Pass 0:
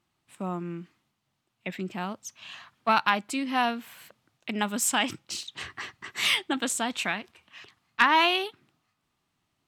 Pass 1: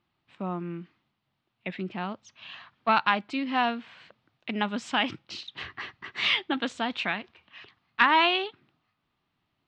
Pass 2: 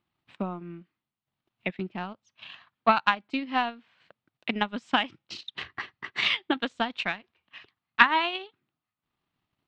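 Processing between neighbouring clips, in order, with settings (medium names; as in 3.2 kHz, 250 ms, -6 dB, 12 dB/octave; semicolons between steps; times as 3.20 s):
low-pass 4.3 kHz 24 dB/octave
transient shaper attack +10 dB, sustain -10 dB; trim -4.5 dB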